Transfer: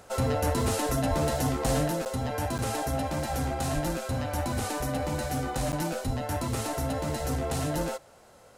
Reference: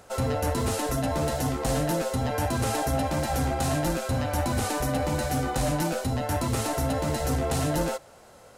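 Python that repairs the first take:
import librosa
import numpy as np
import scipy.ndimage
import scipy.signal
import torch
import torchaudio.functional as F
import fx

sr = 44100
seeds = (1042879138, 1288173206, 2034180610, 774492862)

y = fx.fix_deplosive(x, sr, at_s=(1.09, 3.74, 6.06))
y = fx.fix_interpolate(y, sr, at_s=(2.05, 2.58, 5.72), length_ms=8.9)
y = fx.fix_level(y, sr, at_s=1.88, step_db=3.5)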